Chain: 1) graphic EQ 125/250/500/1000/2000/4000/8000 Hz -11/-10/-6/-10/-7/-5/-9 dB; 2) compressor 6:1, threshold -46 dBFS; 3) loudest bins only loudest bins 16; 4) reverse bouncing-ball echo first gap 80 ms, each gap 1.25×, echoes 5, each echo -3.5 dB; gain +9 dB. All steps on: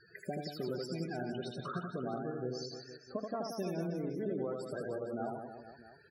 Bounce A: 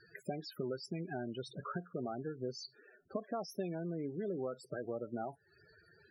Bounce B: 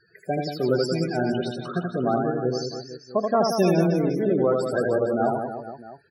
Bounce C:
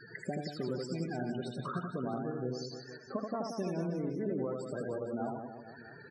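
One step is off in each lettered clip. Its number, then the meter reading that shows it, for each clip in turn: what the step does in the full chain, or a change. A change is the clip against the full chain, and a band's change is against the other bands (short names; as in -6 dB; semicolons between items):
4, crest factor change +2.5 dB; 2, mean gain reduction 13.0 dB; 1, 4 kHz band -2.5 dB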